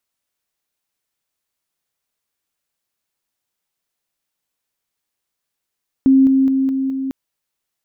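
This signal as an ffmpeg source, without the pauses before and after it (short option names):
-f lavfi -i "aevalsrc='pow(10,(-7.5-3*floor(t/0.21))/20)*sin(2*PI*267*t)':d=1.05:s=44100"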